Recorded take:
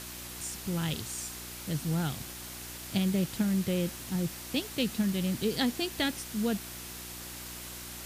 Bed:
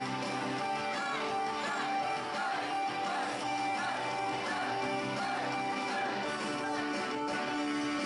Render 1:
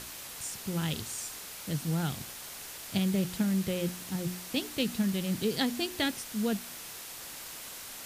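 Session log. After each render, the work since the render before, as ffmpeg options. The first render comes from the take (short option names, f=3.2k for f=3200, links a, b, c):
-af "bandreject=f=60:t=h:w=4,bandreject=f=120:t=h:w=4,bandreject=f=180:t=h:w=4,bandreject=f=240:t=h:w=4,bandreject=f=300:t=h:w=4,bandreject=f=360:t=h:w=4"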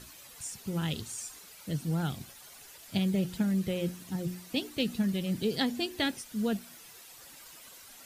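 -af "afftdn=nr=11:nf=-44"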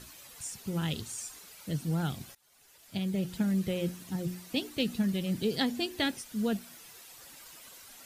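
-filter_complex "[0:a]asplit=2[a][b];[a]atrim=end=2.35,asetpts=PTS-STARTPTS,afade=t=out:st=2.346:d=0.004:c=hsin:silence=0.0668344[c];[b]atrim=start=2.35,asetpts=PTS-STARTPTS,afade=t=in:d=1.14:silence=0.0668344[d];[c][d]concat=n=2:v=0:a=1"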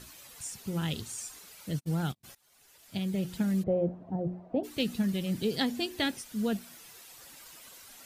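-filter_complex "[0:a]asplit=3[a][b][c];[a]afade=t=out:st=1.72:d=0.02[d];[b]agate=range=-43dB:threshold=-35dB:ratio=16:release=100:detection=peak,afade=t=in:st=1.72:d=0.02,afade=t=out:st=2.23:d=0.02[e];[c]afade=t=in:st=2.23:d=0.02[f];[d][e][f]amix=inputs=3:normalize=0,asplit=3[g][h][i];[g]afade=t=out:st=3.62:d=0.02[j];[h]lowpass=f=670:t=q:w=4.2,afade=t=in:st=3.62:d=0.02,afade=t=out:st=4.63:d=0.02[k];[i]afade=t=in:st=4.63:d=0.02[l];[j][k][l]amix=inputs=3:normalize=0"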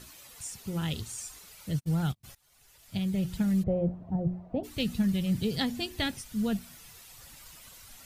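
-af "bandreject=f=1.6k:w=30,asubboost=boost=6:cutoff=130"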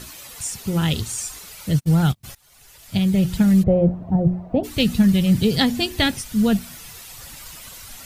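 -af "volume=11.5dB"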